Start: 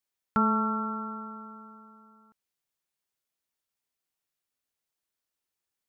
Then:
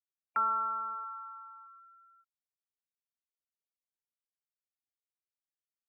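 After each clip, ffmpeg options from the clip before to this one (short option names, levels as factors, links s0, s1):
-af "highpass=1200,afftfilt=real='re*gte(hypot(re,im),0.00631)':imag='im*gte(hypot(re,im),0.00631)':win_size=1024:overlap=0.75"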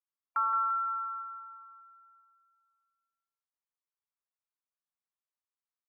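-af "bandpass=f=1100:t=q:w=2.4:csg=0,aecho=1:1:172|344|516|688|860|1032|1204:0.422|0.232|0.128|0.0702|0.0386|0.0212|0.0117,volume=1.41"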